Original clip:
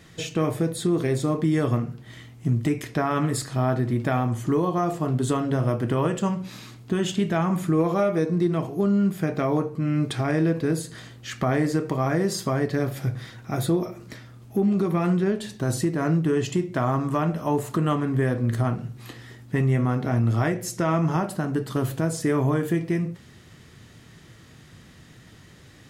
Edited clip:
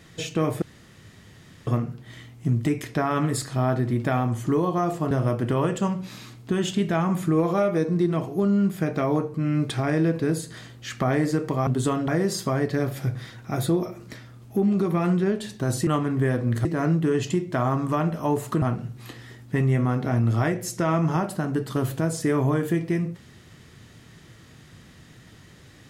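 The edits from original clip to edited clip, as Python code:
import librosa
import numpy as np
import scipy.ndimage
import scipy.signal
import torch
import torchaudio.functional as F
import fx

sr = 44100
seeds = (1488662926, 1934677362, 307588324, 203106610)

y = fx.edit(x, sr, fx.room_tone_fill(start_s=0.62, length_s=1.05),
    fx.move(start_s=5.11, length_s=0.41, to_s=12.08),
    fx.move(start_s=17.84, length_s=0.78, to_s=15.87), tone=tone)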